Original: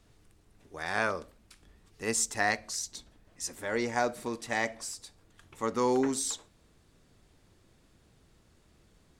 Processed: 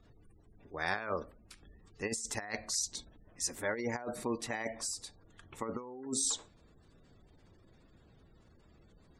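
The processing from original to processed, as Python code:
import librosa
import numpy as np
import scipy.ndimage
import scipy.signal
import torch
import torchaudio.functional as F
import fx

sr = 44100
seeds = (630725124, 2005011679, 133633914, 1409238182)

y = fx.spec_gate(x, sr, threshold_db=-25, keep='strong')
y = fx.over_compress(y, sr, threshold_db=-33.0, ratio=-0.5)
y = y * 10.0 ** (-2.0 / 20.0)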